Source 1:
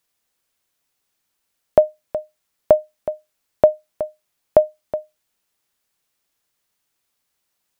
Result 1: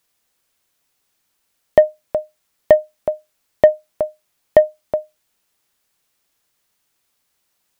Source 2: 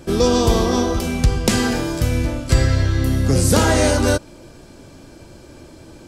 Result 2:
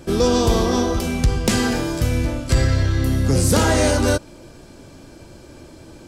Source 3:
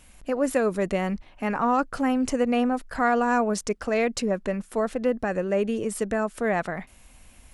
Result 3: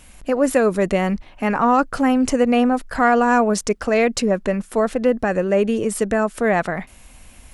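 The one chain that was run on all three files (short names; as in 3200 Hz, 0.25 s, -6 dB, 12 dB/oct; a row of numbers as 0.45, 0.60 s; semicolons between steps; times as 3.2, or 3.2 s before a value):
soft clip -5.5 dBFS; match loudness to -19 LUFS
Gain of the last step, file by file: +4.5, -0.5, +7.0 dB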